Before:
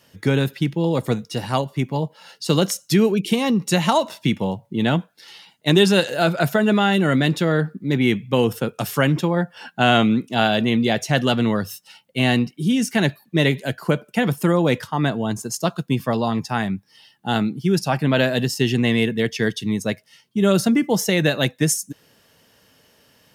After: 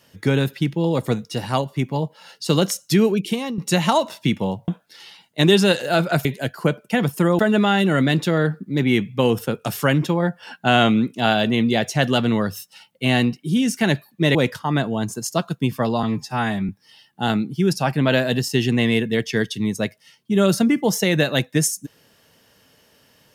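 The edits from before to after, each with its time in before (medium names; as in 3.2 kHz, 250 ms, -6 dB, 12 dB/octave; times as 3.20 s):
3.13–3.58 s: fade out, to -11.5 dB
4.68–4.96 s: delete
13.49–14.63 s: move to 6.53 s
16.31–16.75 s: stretch 1.5×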